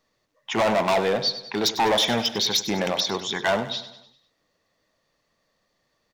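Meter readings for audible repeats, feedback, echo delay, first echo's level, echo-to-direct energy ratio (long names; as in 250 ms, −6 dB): 4, 49%, 99 ms, −13.0 dB, −12.0 dB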